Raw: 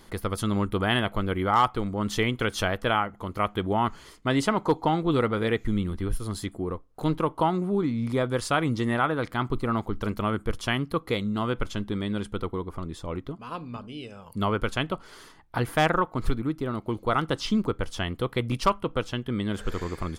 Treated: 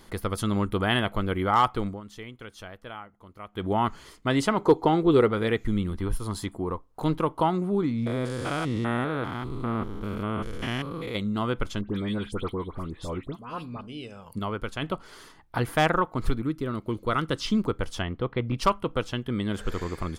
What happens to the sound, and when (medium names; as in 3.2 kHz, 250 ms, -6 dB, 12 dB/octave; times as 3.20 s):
1.87–3.66 s: dip -16 dB, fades 0.14 s
4.59–5.29 s: peaking EQ 400 Hz +9.5 dB 0.54 oct
5.99–7.05 s: peaking EQ 950 Hz +8 dB 0.47 oct
8.06–11.15 s: spectrogram pixelated in time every 200 ms
11.81–13.81 s: phase dispersion highs, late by 83 ms, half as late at 2.3 kHz
14.39–14.82 s: gain -5.5 dB
16.43–17.47 s: peaking EQ 780 Hz -8.5 dB 0.5 oct
18.02–18.58 s: distance through air 310 m